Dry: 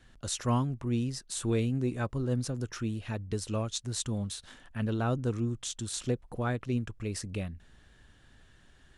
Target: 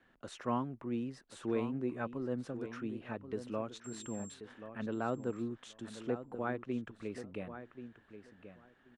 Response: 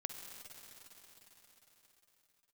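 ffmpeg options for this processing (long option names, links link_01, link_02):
-filter_complex "[0:a]acrossover=split=190 2600:gain=0.112 1 0.112[link_01][link_02][link_03];[link_01][link_02][link_03]amix=inputs=3:normalize=0,asettb=1/sr,asplit=3[link_04][link_05][link_06];[link_04]atrim=end=3.844[link_07];[link_05]atrim=start=3.84:end=4.34,asetpts=PTS-STARTPTS,afade=type=in:duration=0.004:curve=qsin,afade=type=out:start_time=0.496:duration=0.004:curve=qsin,aeval=exprs='val(0)+0.00447*sin(2*PI*7500*n/s)':channel_layout=same[link_08];[link_06]atrim=start=4.336[link_09];[link_07][link_08]acrossfade=duration=0.004:curve1=hsin:curve2=qsin[link_10];[link_10][link_09]acrossfade=duration=0.004:curve1=qsin:curve2=hsin,asplit=2[link_11][link_12];[link_12]adelay=1082,lowpass=frequency=4300:poles=1,volume=-11dB,asplit=2[link_13][link_14];[link_14]adelay=1082,lowpass=frequency=4300:poles=1,volume=0.16[link_15];[link_11][link_13][link_15]amix=inputs=3:normalize=0,volume=-3dB"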